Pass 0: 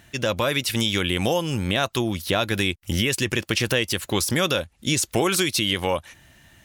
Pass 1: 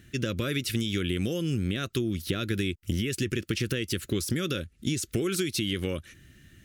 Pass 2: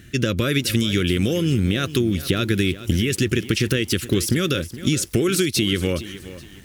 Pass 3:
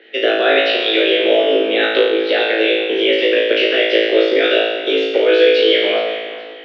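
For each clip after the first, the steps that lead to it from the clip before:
EQ curve 390 Hz 0 dB, 900 Hz -27 dB, 1300 Hz -7 dB; compressor, threshold -26 dBFS, peak gain reduction 7 dB; gain +1.5 dB
lo-fi delay 0.419 s, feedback 35%, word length 8-bit, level -14.5 dB; gain +8.5 dB
mistuned SSB +130 Hz 240–3400 Hz; flutter echo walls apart 3.1 m, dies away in 1.3 s; harmonic-percussive split percussive +9 dB; gain -1 dB

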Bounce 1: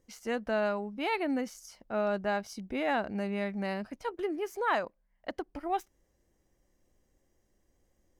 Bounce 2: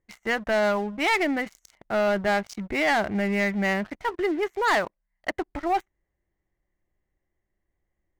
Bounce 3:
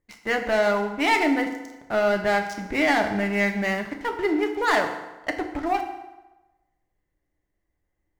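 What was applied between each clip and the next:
Wiener smoothing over 9 samples; thirty-one-band EQ 250 Hz -10 dB, 500 Hz -8 dB, 2000 Hz +9 dB; sample leveller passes 3
FDN reverb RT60 1.1 s, low-frequency decay 0.9×, high-frequency decay 0.75×, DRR 3.5 dB

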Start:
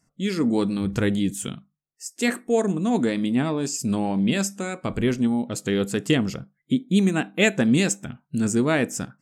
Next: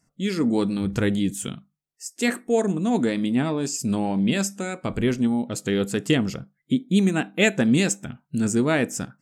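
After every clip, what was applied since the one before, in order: notch 1100 Hz, Q 28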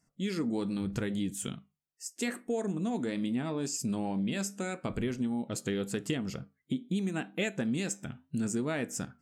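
compressor, threshold -23 dBFS, peak gain reduction 9.5 dB; flange 0.81 Hz, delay 4.3 ms, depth 2.2 ms, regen -88%; gain -1 dB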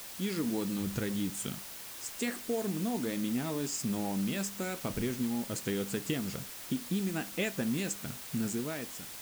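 ending faded out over 0.81 s; added noise white -44 dBFS; gain -1 dB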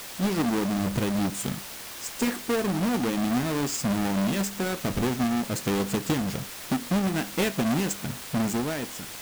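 half-waves squared off; gain +2.5 dB

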